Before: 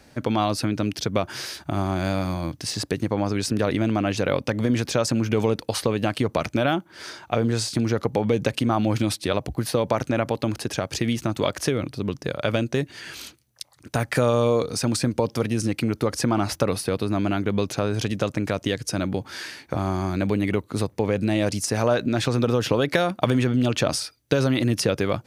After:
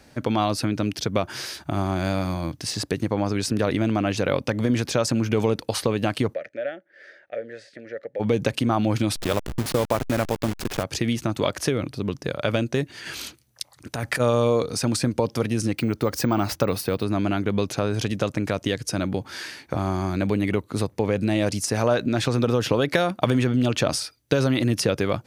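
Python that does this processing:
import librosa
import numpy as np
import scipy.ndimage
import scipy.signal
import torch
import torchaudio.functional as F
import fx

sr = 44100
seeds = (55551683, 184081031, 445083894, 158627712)

y = fx.double_bandpass(x, sr, hz=1000.0, octaves=1.7, at=(6.33, 8.19), fade=0.02)
y = fx.delta_hold(y, sr, step_db=-25.0, at=(9.15, 10.82), fade=0.02)
y = fx.over_compress(y, sr, threshold_db=-27.0, ratio=-1.0, at=(13.05, 14.19), fade=0.02)
y = fx.resample_bad(y, sr, factor=2, down='filtered', up='hold', at=(15.75, 17.03))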